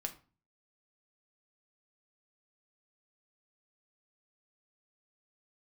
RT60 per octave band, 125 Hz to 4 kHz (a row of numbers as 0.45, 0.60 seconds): 0.60, 0.50, 0.35, 0.35, 0.30, 0.25 seconds